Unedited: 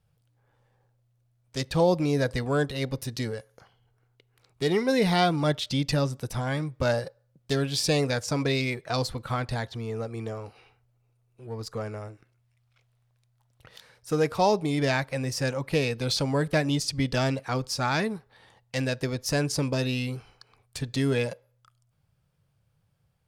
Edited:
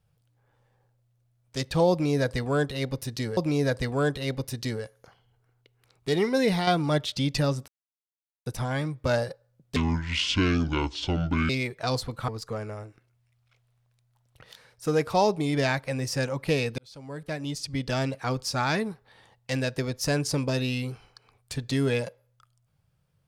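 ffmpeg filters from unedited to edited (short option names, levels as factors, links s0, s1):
-filter_complex "[0:a]asplit=8[s0][s1][s2][s3][s4][s5][s6][s7];[s0]atrim=end=3.372[s8];[s1]atrim=start=1.908:end=5.21,asetpts=PTS-STARTPTS,afade=t=out:st=3.032:d=0.27:c=qsin:silence=0.446684[s9];[s2]atrim=start=5.21:end=6.22,asetpts=PTS-STARTPTS,afade=t=in:d=0.004:c=hsin:silence=0.446684,afade=t=out:st=1.006:d=0.004:c=hsin,apad=pad_dur=0.78[s10];[s3]atrim=start=6.22:end=7.524,asetpts=PTS-STARTPTS,afade=t=in:d=0.004:c=hsin[s11];[s4]atrim=start=7.52:end=8.56,asetpts=PTS-STARTPTS,asetrate=26460,aresample=44100[s12];[s5]atrim=start=8.556:end=9.352[s13];[s6]atrim=start=11.528:end=16.03,asetpts=PTS-STARTPTS,afade=t=out:st=4.498:d=0.004:c=hsin[s14];[s7]atrim=start=16.03,asetpts=PTS-STARTPTS,afade=t=in:d=1.51[s15];[s9][s10][s11]concat=n=3:v=0:a=1[s16];[s8][s16]acrossfade=d=0.004:c1=hsin:c2=hsin[s17];[s17][s12]acrossfade=d=0.004:c1=hsin:c2=hsin[s18];[s18][s13]acrossfade=d=0.004:c1=hsin:c2=hsin[s19];[s14][s15]concat=n=2:v=0:a=1[s20];[s19][s20]acrossfade=d=0.004:c1=hsin:c2=hsin"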